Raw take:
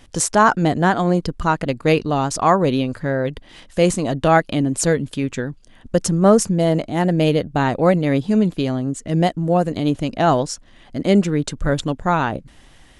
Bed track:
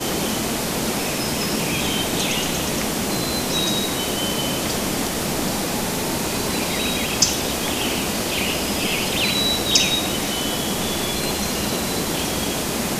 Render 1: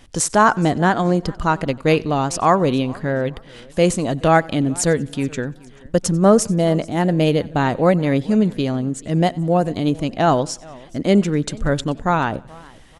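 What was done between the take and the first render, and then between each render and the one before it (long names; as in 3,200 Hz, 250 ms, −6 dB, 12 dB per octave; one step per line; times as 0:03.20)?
repeating echo 93 ms, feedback 44%, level −24 dB
feedback echo with a swinging delay time 429 ms, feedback 30%, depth 180 cents, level −23.5 dB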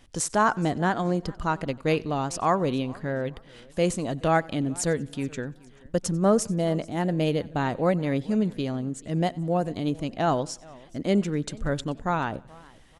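level −8 dB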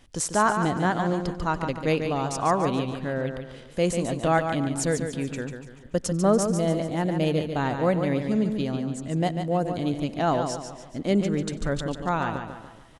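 repeating echo 144 ms, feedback 40%, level −7 dB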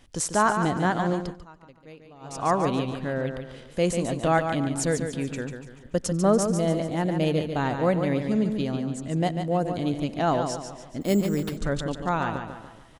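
0:01.14–0:02.52: duck −22.5 dB, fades 0.32 s
0:11.01–0:11.57: bad sample-rate conversion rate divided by 6×, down none, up hold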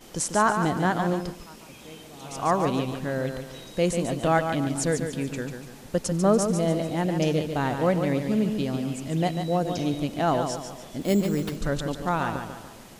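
mix in bed track −25 dB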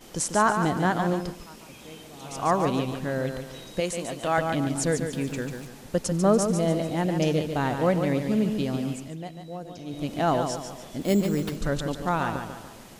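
0:03.80–0:04.38: low-shelf EQ 410 Hz −11 dB
0:05.13–0:05.67: converter with a step at zero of −45.5 dBFS
0:08.90–0:10.13: duck −12.5 dB, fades 0.27 s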